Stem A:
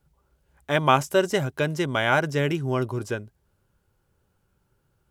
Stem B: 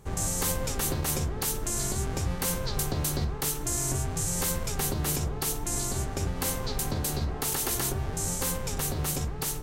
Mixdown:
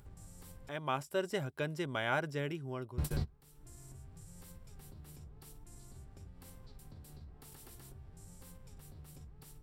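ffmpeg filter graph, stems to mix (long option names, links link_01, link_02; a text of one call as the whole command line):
ffmpeg -i stem1.wav -i stem2.wav -filter_complex "[0:a]volume=-12dB,afade=type=in:start_time=0.65:duration=0.74:silence=0.354813,afade=type=out:start_time=2.21:duration=0.75:silence=0.473151,asplit=2[link_01][link_02];[1:a]bass=frequency=250:gain=9,treble=frequency=4000:gain=0,volume=-11.5dB,asplit=3[link_03][link_04][link_05];[link_03]atrim=end=0.69,asetpts=PTS-STARTPTS,afade=type=out:start_time=0.686:duration=0.004:curve=hsin[link_06];[link_04]atrim=start=0.69:end=2.98,asetpts=PTS-STARTPTS,volume=0[link_07];[link_05]atrim=start=2.98,asetpts=PTS-STARTPTS,afade=type=in:duration=0.004:curve=hsin[link_08];[link_06][link_07][link_08]concat=n=3:v=0:a=1[link_09];[link_02]apad=whole_len=424667[link_10];[link_09][link_10]sidechaingate=range=-26dB:threshold=-51dB:ratio=16:detection=peak[link_11];[link_01][link_11]amix=inputs=2:normalize=0,bandreject=frequency=6400:width=7.2,acompressor=mode=upward:threshold=-42dB:ratio=2.5" out.wav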